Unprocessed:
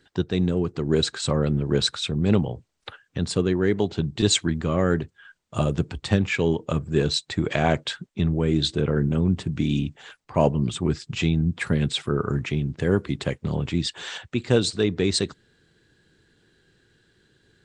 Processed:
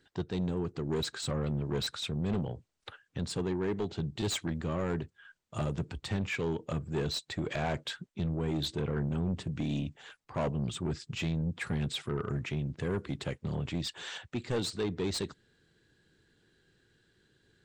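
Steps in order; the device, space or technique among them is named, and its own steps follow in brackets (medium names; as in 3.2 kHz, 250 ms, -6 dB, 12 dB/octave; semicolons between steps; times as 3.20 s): saturation between pre-emphasis and de-emphasis (treble shelf 5.9 kHz +10 dB; saturation -19.5 dBFS, distortion -10 dB; treble shelf 5.9 kHz -10 dB); trim -6.5 dB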